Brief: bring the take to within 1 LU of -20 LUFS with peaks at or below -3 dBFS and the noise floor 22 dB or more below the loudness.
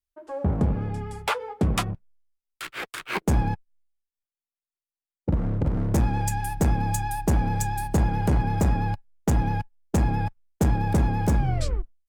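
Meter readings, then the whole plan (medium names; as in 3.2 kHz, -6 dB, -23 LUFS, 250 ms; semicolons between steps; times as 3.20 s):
loudness -26.0 LUFS; peak level -11.0 dBFS; loudness target -20.0 LUFS
-> trim +6 dB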